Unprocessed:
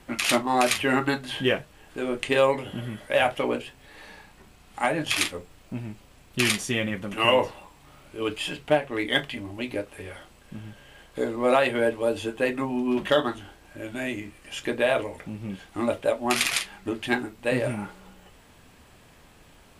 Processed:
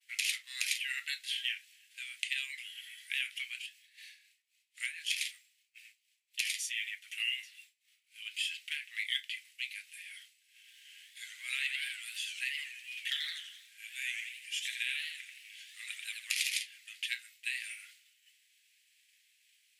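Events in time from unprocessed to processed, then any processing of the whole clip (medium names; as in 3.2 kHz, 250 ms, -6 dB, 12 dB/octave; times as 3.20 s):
3.66–8.34 s: harmonic tremolo 3.9 Hz, depth 50%, crossover 1.1 kHz
10.57–16.49 s: modulated delay 82 ms, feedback 51%, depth 187 cents, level -5 dB
whole clip: steep high-pass 2 kHz 48 dB/octave; expander -53 dBFS; compression 3:1, threshold -32 dBFS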